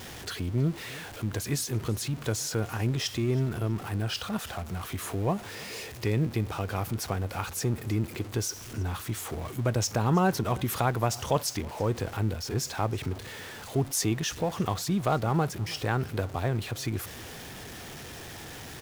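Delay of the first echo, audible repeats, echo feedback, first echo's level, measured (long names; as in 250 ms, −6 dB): 323 ms, 2, 29%, −22.5 dB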